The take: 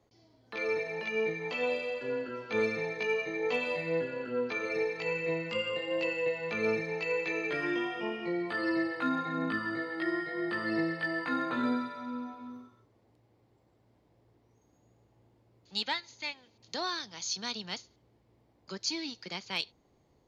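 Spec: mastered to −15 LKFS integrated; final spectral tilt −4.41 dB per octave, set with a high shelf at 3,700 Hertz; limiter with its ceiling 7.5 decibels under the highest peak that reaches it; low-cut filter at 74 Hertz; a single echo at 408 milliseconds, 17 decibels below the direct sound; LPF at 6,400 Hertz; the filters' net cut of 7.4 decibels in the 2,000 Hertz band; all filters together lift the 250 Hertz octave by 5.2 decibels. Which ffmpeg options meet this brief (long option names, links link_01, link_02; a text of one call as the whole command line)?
ffmpeg -i in.wav -af "highpass=74,lowpass=6400,equalizer=frequency=250:width_type=o:gain=7,equalizer=frequency=2000:width_type=o:gain=-7.5,highshelf=frequency=3700:gain=-6,alimiter=limit=-24dB:level=0:latency=1,aecho=1:1:408:0.141,volume=19dB" out.wav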